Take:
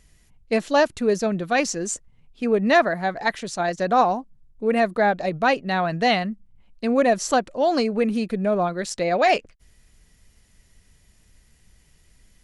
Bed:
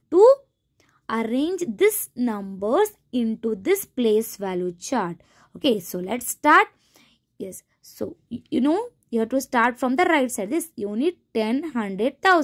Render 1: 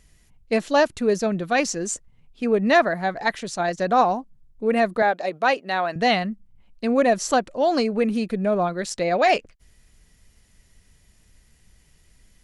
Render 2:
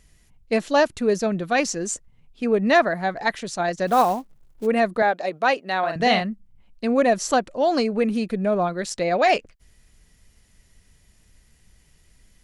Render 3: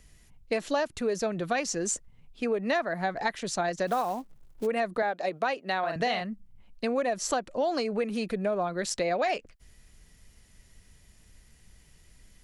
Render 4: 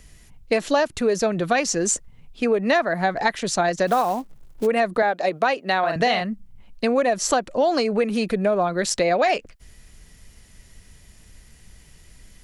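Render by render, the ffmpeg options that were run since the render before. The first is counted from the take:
ffmpeg -i in.wav -filter_complex "[0:a]asettb=1/sr,asplit=3[link_01][link_02][link_03];[link_01]atrim=end=5.024[link_04];[link_02]atrim=start=5.02:end=5.96,asetpts=PTS-STARTPTS,afade=type=in:duration=0.004:curve=qsin,afade=type=out:start_time=0.936:duration=0.004:curve=qsin,highpass=350[link_05];[link_03]atrim=start=5.956[link_06];[link_04][link_05]acrossfade=duration=0.004:curve1=hsin:curve2=qsin[link_07];[link_07][link_06]acrossfade=duration=0.004:curve1=qsin:curve2=hsin" out.wav
ffmpeg -i in.wav -filter_complex "[0:a]asplit=3[link_01][link_02][link_03];[link_01]afade=type=out:start_time=3.86:duration=0.02[link_04];[link_02]acrusher=bits=5:mode=log:mix=0:aa=0.000001,afade=type=in:start_time=3.86:duration=0.02,afade=type=out:start_time=4.65:duration=0.02[link_05];[link_03]afade=type=in:start_time=4.65:duration=0.02[link_06];[link_04][link_05][link_06]amix=inputs=3:normalize=0,asettb=1/sr,asplit=3[link_07][link_08][link_09];[link_07]atrim=end=5.794[link_10];[link_08]atrim=start=5.79:end=6.21,asetpts=PTS-STARTPTS,afade=type=in:duration=0.004:curve=qsin,afade=type=out:start_time=0.416:duration=0.004:curve=qsin,asplit=2[link_11][link_12];[link_12]adelay=42,volume=-6dB[link_13];[link_11][link_13]amix=inputs=2:normalize=0,atrim=end_sample=18522[link_14];[link_09]atrim=start=6.206[link_15];[link_10][link_14]acrossfade=duration=0.004:curve1=hsin:curve2=qsin[link_16];[link_16][link_15]acrossfade=duration=0.004:curve1=qsin:curve2=hsin" out.wav
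ffmpeg -i in.wav -filter_complex "[0:a]acrossover=split=340|4900[link_01][link_02][link_03];[link_01]alimiter=level_in=5.5dB:limit=-24dB:level=0:latency=1,volume=-5.5dB[link_04];[link_04][link_02][link_03]amix=inputs=3:normalize=0,acompressor=threshold=-25dB:ratio=6" out.wav
ffmpeg -i in.wav -af "volume=8dB" out.wav

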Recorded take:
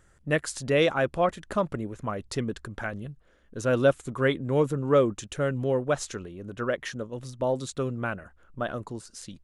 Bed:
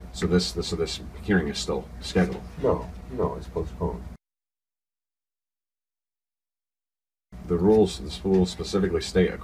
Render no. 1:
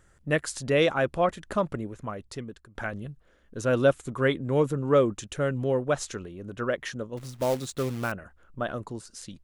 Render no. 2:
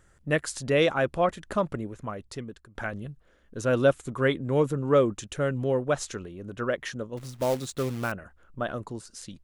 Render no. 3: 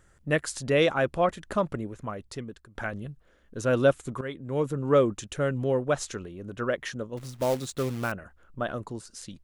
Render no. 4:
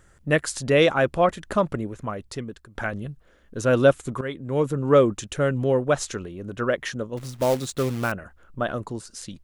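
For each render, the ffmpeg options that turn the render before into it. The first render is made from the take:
ffmpeg -i in.wav -filter_complex "[0:a]asettb=1/sr,asplit=3[link_01][link_02][link_03];[link_01]atrim=end=7.174[link_04];[link_02]atrim=start=7.17:end=8.12,asetpts=PTS-STARTPTS,afade=type=in:duration=0.004:curve=qsin,afade=type=out:start_time=0.946:duration=0.004:curve=qsin,acrusher=bits=3:mode=log:mix=0:aa=0.000001[link_05];[link_03]atrim=start=8.116[link_06];[link_04][link_05]acrossfade=duration=0.004:curve1=hsin:curve2=qsin[link_07];[link_07][link_06]acrossfade=duration=0.004:curve1=qsin:curve2=hsin,asplit=2[link_08][link_09];[link_08]atrim=end=2.75,asetpts=PTS-STARTPTS,afade=type=out:start_time=1.7:duration=1.05:silence=0.133352[link_10];[link_09]atrim=start=2.75,asetpts=PTS-STARTPTS,afade=type=in:duration=0.004:curve=hsin:silence=0.133352[link_11];[link_10][link_11]concat=n=2:v=0:a=1" out.wav
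ffmpeg -i in.wav -af anull out.wav
ffmpeg -i in.wav -filter_complex "[0:a]asplit=2[link_01][link_02];[link_01]atrim=end=4.21,asetpts=PTS-STARTPTS,afade=type=out:start_time=4.206:duration=0.004:curve=hsin:silence=0.177828[link_03];[link_02]atrim=start=4.21,asetpts=PTS-STARTPTS,afade=type=in:duration=0.69:silence=0.177828[link_04];[link_03][link_04]concat=n=2:v=0:a=1" out.wav
ffmpeg -i in.wav -af "volume=4.5dB" out.wav

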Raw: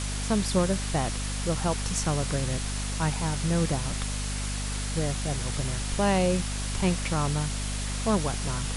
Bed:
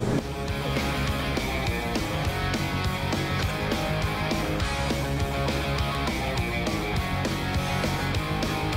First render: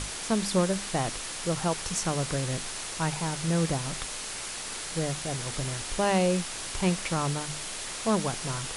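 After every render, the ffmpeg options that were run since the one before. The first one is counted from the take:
ffmpeg -i in.wav -af "bandreject=frequency=50:width_type=h:width=6,bandreject=frequency=100:width_type=h:width=6,bandreject=frequency=150:width_type=h:width=6,bandreject=frequency=200:width_type=h:width=6,bandreject=frequency=250:width_type=h:width=6" out.wav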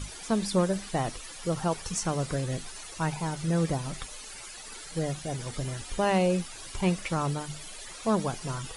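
ffmpeg -i in.wav -af "afftdn=noise_reduction=13:noise_floor=-37" out.wav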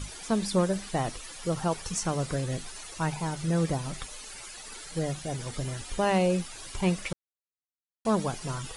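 ffmpeg -i in.wav -filter_complex "[0:a]asplit=3[link_01][link_02][link_03];[link_01]atrim=end=7.13,asetpts=PTS-STARTPTS,afade=type=out:start_time=7.126:duration=0.004:curve=hsin[link_04];[link_02]atrim=start=7.13:end=8.05,asetpts=PTS-STARTPTS,volume=0[link_05];[link_03]atrim=start=8.05,asetpts=PTS-STARTPTS,afade=type=in:duration=0.004:curve=hsin[link_06];[link_04][link_05][link_06]concat=n=3:v=0:a=1" out.wav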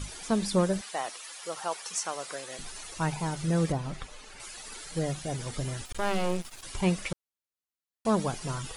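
ffmpeg -i in.wav -filter_complex "[0:a]asettb=1/sr,asplit=3[link_01][link_02][link_03];[link_01]atrim=end=0.814[link_04];[link_02]atrim=start=0.81:end=2.59,asetpts=PTS-STARTPTS,afade=type=in:duration=0.004:curve=qsin,afade=type=out:start_time=1.776:duration=0.004:curve=qsin,highpass=660[link_05];[link_03]atrim=start=2.586[link_06];[link_04][link_05]acrossfade=duration=0.004:curve1=hsin:curve2=qsin[link_07];[link_07][link_06]acrossfade=duration=0.004:curve1=qsin:curve2=hsin,asettb=1/sr,asplit=3[link_08][link_09][link_10];[link_08]atrim=end=3.724[link_11];[link_09]atrim=start=3.72:end=4.4,asetpts=PTS-STARTPTS,afade=type=in:duration=0.004:curve=qsin,afade=type=out:start_time=0.676:duration=0.004:curve=qsin,lowpass=frequency=2400:poles=1[link_12];[link_10]atrim=start=4.396[link_13];[link_11][link_12]acrossfade=duration=0.004:curve1=hsin:curve2=qsin[link_14];[link_14][link_13]acrossfade=duration=0.004:curve1=qsin:curve2=hsin,asettb=1/sr,asplit=3[link_15][link_16][link_17];[link_15]atrim=end=5.854[link_18];[link_16]atrim=start=5.85:end=6.63,asetpts=PTS-STARTPTS,afade=type=in:duration=0.004:curve=qsin,afade=type=out:start_time=0.776:duration=0.004:curve=qsin,aeval=exprs='max(val(0),0)':channel_layout=same[link_19];[link_17]atrim=start=6.626[link_20];[link_18][link_19]acrossfade=duration=0.004:curve1=hsin:curve2=qsin[link_21];[link_21][link_20]acrossfade=duration=0.004:curve1=qsin:curve2=hsin" out.wav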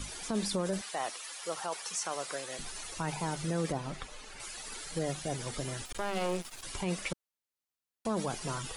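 ffmpeg -i in.wav -filter_complex "[0:a]acrossover=split=210[link_01][link_02];[link_01]acompressor=threshold=-41dB:ratio=6[link_03];[link_02]alimiter=level_in=0.5dB:limit=-24dB:level=0:latency=1:release=11,volume=-0.5dB[link_04];[link_03][link_04]amix=inputs=2:normalize=0" out.wav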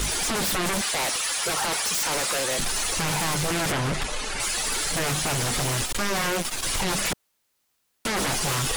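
ffmpeg -i in.wav -af "aeval=exprs='0.0794*sin(PI/2*5.62*val(0)/0.0794)':channel_layout=same" out.wav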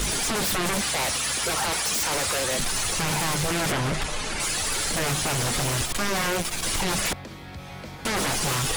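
ffmpeg -i in.wav -i bed.wav -filter_complex "[1:a]volume=-12.5dB[link_01];[0:a][link_01]amix=inputs=2:normalize=0" out.wav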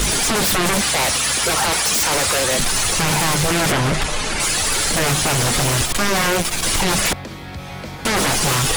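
ffmpeg -i in.wav -af "volume=7.5dB" out.wav

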